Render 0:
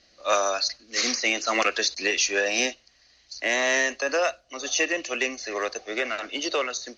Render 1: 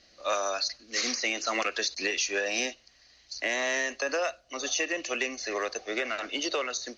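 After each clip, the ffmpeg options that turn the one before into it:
-af "acompressor=threshold=-28dB:ratio=2.5"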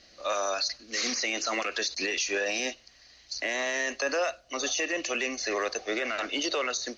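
-af "alimiter=limit=-23.5dB:level=0:latency=1:release=25,volume=3.5dB"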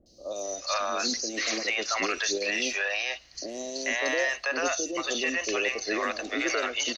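-filter_complex "[0:a]acrossover=split=580|4800[a][b][c];[c]adelay=60[d];[b]adelay=440[e];[a][e][d]amix=inputs=3:normalize=0,volume=3dB"

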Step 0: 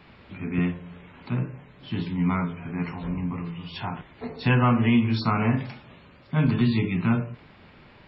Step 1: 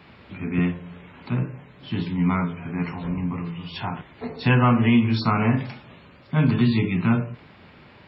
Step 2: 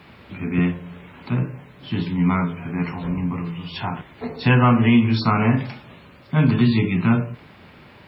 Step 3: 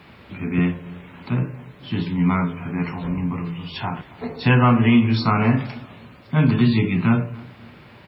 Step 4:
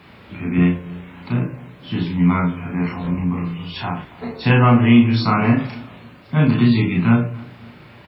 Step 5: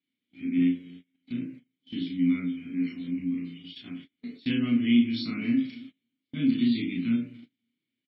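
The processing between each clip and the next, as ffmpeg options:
-af "highpass=57,volume=2.5dB"
-af "acrusher=bits=11:mix=0:aa=0.000001,volume=2.5dB"
-filter_complex "[0:a]asplit=2[a][b];[b]adelay=275,lowpass=f=2k:p=1,volume=-21dB,asplit=2[c][d];[d]adelay=275,lowpass=f=2k:p=1,volume=0.43,asplit=2[e][f];[f]adelay=275,lowpass=f=2k:p=1,volume=0.43[g];[a][c][e][g]amix=inputs=4:normalize=0"
-filter_complex "[0:a]asplit=2[a][b];[b]adelay=34,volume=-2.5dB[c];[a][c]amix=inputs=2:normalize=0"
-filter_complex "[0:a]asplit=3[a][b][c];[a]bandpass=f=270:t=q:w=8,volume=0dB[d];[b]bandpass=f=2.29k:t=q:w=8,volume=-6dB[e];[c]bandpass=f=3.01k:t=q:w=8,volume=-9dB[f];[d][e][f]amix=inputs=3:normalize=0,agate=range=-29dB:threshold=-42dB:ratio=16:detection=peak,aexciter=amount=5.3:drive=3.6:freq=3.4k,volume=-1.5dB"

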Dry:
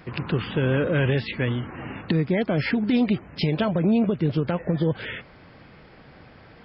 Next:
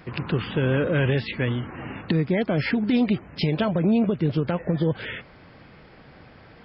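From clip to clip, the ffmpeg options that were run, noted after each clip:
-af anull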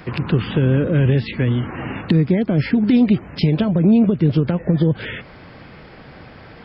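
-filter_complex "[0:a]acrossover=split=370[a][b];[b]acompressor=threshold=-35dB:ratio=6[c];[a][c]amix=inputs=2:normalize=0,volume=8dB"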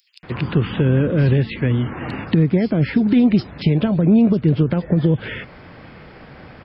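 -filter_complex "[0:a]acrossover=split=4600[a][b];[a]adelay=230[c];[c][b]amix=inputs=2:normalize=0"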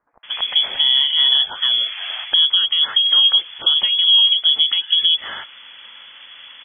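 -af "lowpass=f=3k:t=q:w=0.5098,lowpass=f=3k:t=q:w=0.6013,lowpass=f=3k:t=q:w=0.9,lowpass=f=3k:t=q:w=2.563,afreqshift=-3500"

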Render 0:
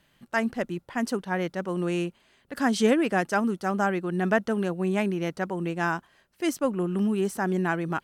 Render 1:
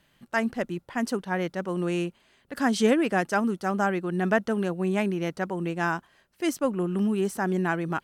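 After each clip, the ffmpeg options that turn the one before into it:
-af anull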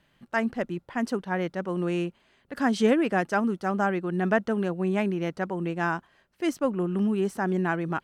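-af "highshelf=f=5.3k:g=-9.5"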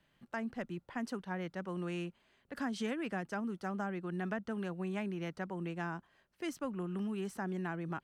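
-filter_complex "[0:a]acrossover=split=250|830[a][b][c];[a]acompressor=threshold=-32dB:ratio=4[d];[b]acompressor=threshold=-37dB:ratio=4[e];[c]acompressor=threshold=-34dB:ratio=4[f];[d][e][f]amix=inputs=3:normalize=0,volume=-7dB"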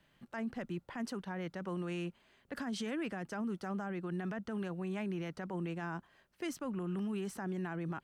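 -af "alimiter=level_in=10.5dB:limit=-24dB:level=0:latency=1:release=17,volume=-10.5dB,volume=3dB"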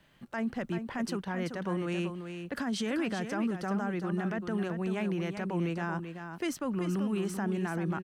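-af "aecho=1:1:385:0.398,volume=6dB"

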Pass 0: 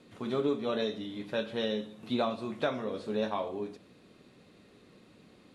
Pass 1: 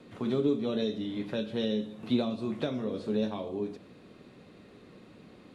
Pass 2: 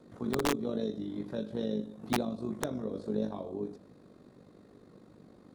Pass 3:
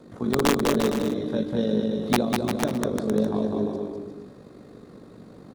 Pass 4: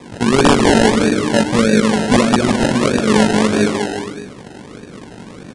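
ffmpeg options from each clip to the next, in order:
-filter_complex "[0:a]highshelf=f=3.6k:g=-8,acrossover=split=420|3000[a][b][c];[b]acompressor=threshold=-47dB:ratio=6[d];[a][d][c]amix=inputs=3:normalize=0,volume=5.5dB"
-af "equalizer=f=2.7k:w=1.4:g=-14.5,aeval=exprs='(mod(8.91*val(0)+1,2)-1)/8.91':c=same,tremolo=f=49:d=0.621"
-af "aecho=1:1:200|350|462.5|546.9|610.2:0.631|0.398|0.251|0.158|0.1,volume=8dB"
-filter_complex "[0:a]asplit=2[a][b];[b]aeval=exprs='(mod(4.47*val(0)+1,2)-1)/4.47':c=same,volume=-4dB[c];[a][c]amix=inputs=2:normalize=0,acrusher=samples=30:mix=1:aa=0.000001:lfo=1:lforange=18:lforate=1.6,aresample=22050,aresample=44100,volume=7dB"

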